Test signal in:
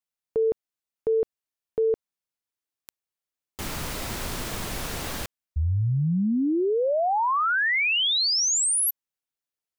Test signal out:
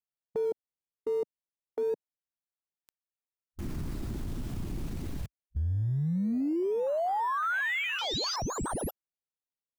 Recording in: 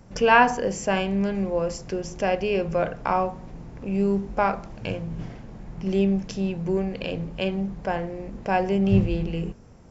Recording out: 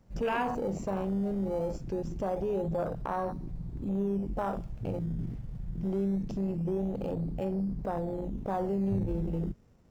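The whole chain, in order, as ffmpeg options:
ffmpeg -i in.wav -filter_complex "[0:a]asplit=2[link_01][link_02];[link_02]acrusher=samples=18:mix=1:aa=0.000001:lfo=1:lforange=18:lforate=0.23,volume=-3.5dB[link_03];[link_01][link_03]amix=inputs=2:normalize=0,afwtdn=0.0794,acompressor=threshold=-31dB:ratio=3:attack=0.61:release=27:knee=6:detection=rms" out.wav

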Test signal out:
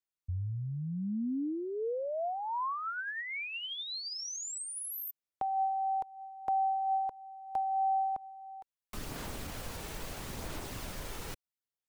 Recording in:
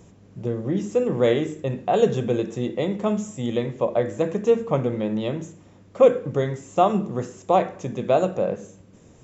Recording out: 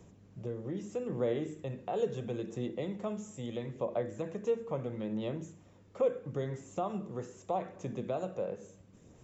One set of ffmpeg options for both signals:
ffmpeg -i in.wav -filter_complex "[0:a]acrossover=split=370|1100[link_01][link_02][link_03];[link_03]alimiter=level_in=3dB:limit=-24dB:level=0:latency=1:release=59,volume=-3dB[link_04];[link_01][link_02][link_04]amix=inputs=3:normalize=0,acompressor=threshold=-31dB:ratio=1.5,aphaser=in_gain=1:out_gain=1:delay=2.3:decay=0.25:speed=0.76:type=sinusoidal,volume=-9dB" out.wav

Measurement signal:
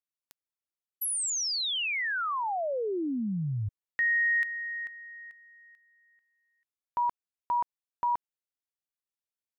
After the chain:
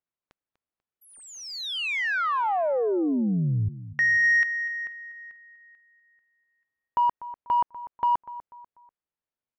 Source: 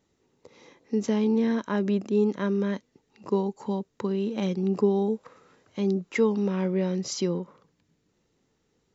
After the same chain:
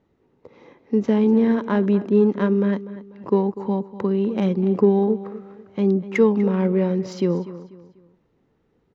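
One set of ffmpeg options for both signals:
ffmpeg -i in.wav -af "aecho=1:1:245|490|735:0.178|0.0622|0.0218,adynamicsmooth=sensitivity=1:basefreq=2200,volume=6.5dB" out.wav

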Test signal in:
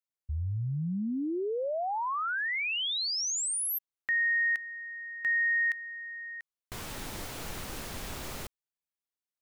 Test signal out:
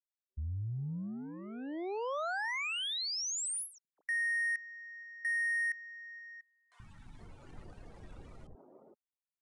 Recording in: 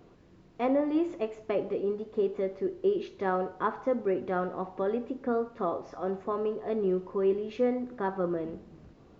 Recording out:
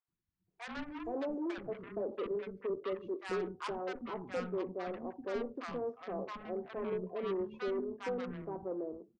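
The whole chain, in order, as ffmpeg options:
ffmpeg -i in.wav -filter_complex "[0:a]afftdn=noise_reduction=22:noise_floor=-39,asoftclip=type=tanh:threshold=-21dB,aeval=exprs='0.0891*(cos(1*acos(clip(val(0)/0.0891,-1,1)))-cos(1*PI/2))+0.02*(cos(5*acos(clip(val(0)/0.0891,-1,1)))-cos(5*PI/2))+0.0178*(cos(7*acos(clip(val(0)/0.0891,-1,1)))-cos(7*PI/2))':channel_layout=same,acrossover=split=250|910[link_01][link_02][link_03];[link_01]adelay=80[link_04];[link_02]adelay=470[link_05];[link_04][link_05][link_03]amix=inputs=3:normalize=0,aresample=22050,aresample=44100,volume=-6.5dB" out.wav

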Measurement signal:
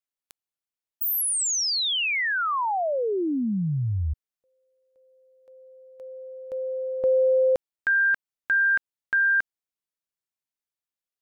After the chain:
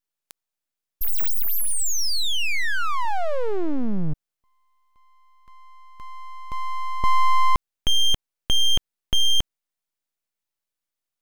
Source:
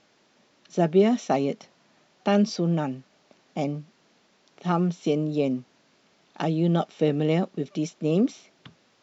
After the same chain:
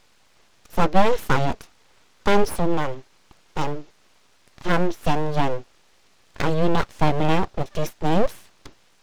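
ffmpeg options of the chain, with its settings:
ffmpeg -i in.wav -af "aeval=exprs='abs(val(0))':channel_layout=same,volume=6dB" out.wav

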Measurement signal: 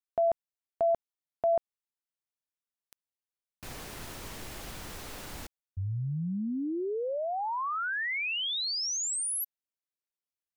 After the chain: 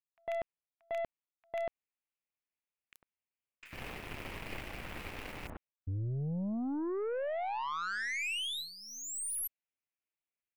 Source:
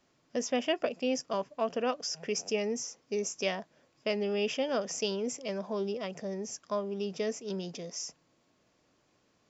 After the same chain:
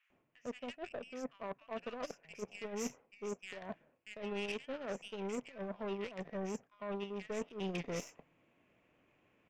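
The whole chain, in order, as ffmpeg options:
ffmpeg -i in.wav -filter_complex "[0:a]highshelf=frequency=3400:width_type=q:width=3:gain=-10.5,areverse,acompressor=threshold=-41dB:ratio=16:attack=0.76:release=260:knee=1:detection=rms,areverse,acrossover=split=1400|5500[link_01][link_02][link_03];[link_03]adelay=30[link_04];[link_01]adelay=100[link_05];[link_05][link_02][link_04]amix=inputs=3:normalize=0,aeval=exprs='0.0211*(cos(1*acos(clip(val(0)/0.0211,-1,1)))-cos(1*PI/2))+0.00211*(cos(7*acos(clip(val(0)/0.0211,-1,1)))-cos(7*PI/2))+0.000473*(cos(8*acos(clip(val(0)/0.0211,-1,1)))-cos(8*PI/2))':channel_layout=same,volume=9dB" out.wav

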